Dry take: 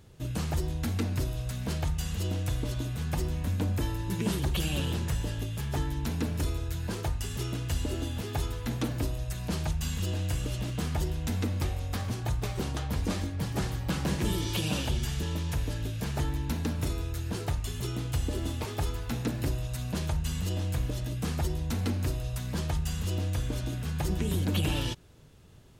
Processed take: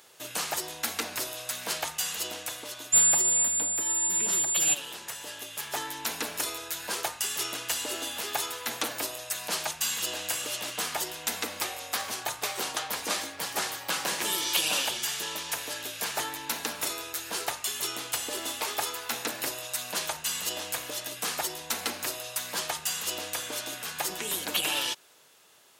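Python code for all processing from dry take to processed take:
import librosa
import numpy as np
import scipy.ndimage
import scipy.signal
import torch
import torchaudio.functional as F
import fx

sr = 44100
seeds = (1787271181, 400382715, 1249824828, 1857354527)

y = fx.low_shelf(x, sr, hz=330.0, db=10.0, at=(2.92, 4.73), fade=0.02)
y = fx.dmg_tone(y, sr, hz=7200.0, level_db=-27.0, at=(2.92, 4.73), fade=0.02)
y = fx.env_flatten(y, sr, amount_pct=100, at=(2.92, 4.73), fade=0.02)
y = scipy.signal.sosfilt(scipy.signal.butter(2, 740.0, 'highpass', fs=sr, output='sos'), y)
y = fx.high_shelf(y, sr, hz=6800.0, db=6.5)
y = fx.rider(y, sr, range_db=10, speed_s=2.0)
y = y * librosa.db_to_amplitude(-2.0)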